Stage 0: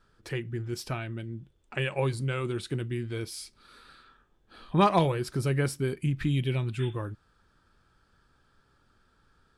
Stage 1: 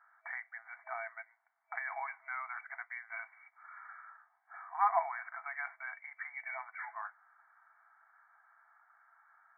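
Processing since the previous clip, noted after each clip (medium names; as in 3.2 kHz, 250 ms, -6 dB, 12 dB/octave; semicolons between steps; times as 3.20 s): FFT band-pass 650–2300 Hz; in parallel at -2 dB: compressor with a negative ratio -46 dBFS, ratio -1; on the sum: trim -4 dB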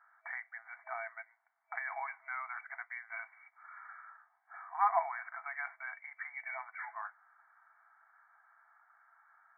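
no audible change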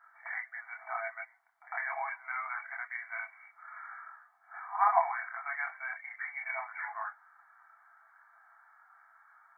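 reverse echo 103 ms -19 dB; chorus voices 4, 0.35 Hz, delay 26 ms, depth 2.7 ms; trim +7.5 dB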